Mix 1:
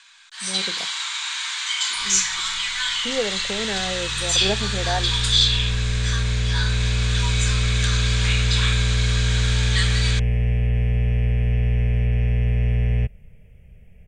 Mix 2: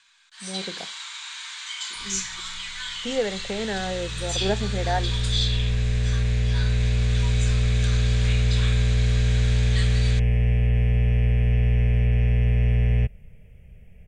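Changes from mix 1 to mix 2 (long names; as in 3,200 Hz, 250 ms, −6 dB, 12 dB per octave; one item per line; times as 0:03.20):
first sound −10.0 dB
reverb: on, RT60 0.55 s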